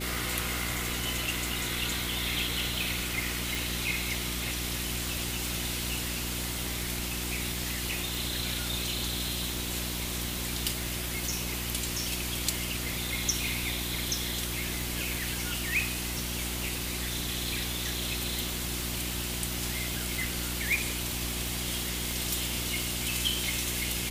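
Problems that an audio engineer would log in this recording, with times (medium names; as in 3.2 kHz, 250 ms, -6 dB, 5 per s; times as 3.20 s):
hum 60 Hz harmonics 6 -37 dBFS
tick 45 rpm
3.55 s: pop
22.11 s: pop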